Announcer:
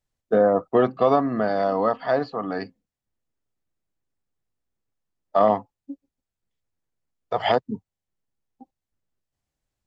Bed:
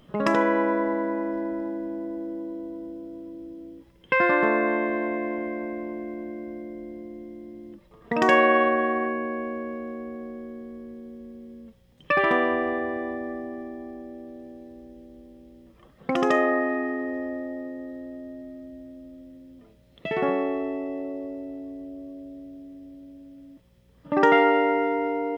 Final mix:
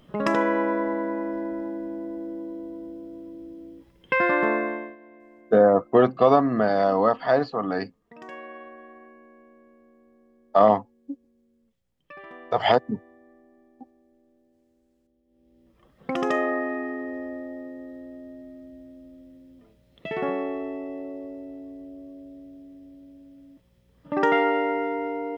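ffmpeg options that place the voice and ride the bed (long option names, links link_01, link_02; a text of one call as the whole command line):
ffmpeg -i stem1.wav -i stem2.wav -filter_complex "[0:a]adelay=5200,volume=1.5dB[link_01];[1:a]volume=18.5dB,afade=type=out:start_time=4.51:duration=0.45:silence=0.0841395,afade=type=in:start_time=15.25:duration=0.82:silence=0.105925[link_02];[link_01][link_02]amix=inputs=2:normalize=0" out.wav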